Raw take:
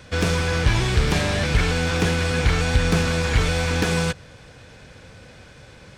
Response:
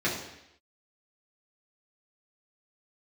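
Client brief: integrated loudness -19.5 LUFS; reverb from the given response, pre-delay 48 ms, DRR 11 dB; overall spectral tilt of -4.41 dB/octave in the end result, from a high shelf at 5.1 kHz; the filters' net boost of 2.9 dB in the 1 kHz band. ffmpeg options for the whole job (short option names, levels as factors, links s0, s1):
-filter_complex "[0:a]equalizer=f=1000:t=o:g=3.5,highshelf=f=5100:g=4.5,asplit=2[s0][s1];[1:a]atrim=start_sample=2205,adelay=48[s2];[s1][s2]afir=irnorm=-1:irlink=0,volume=0.075[s3];[s0][s3]amix=inputs=2:normalize=0,volume=1.12"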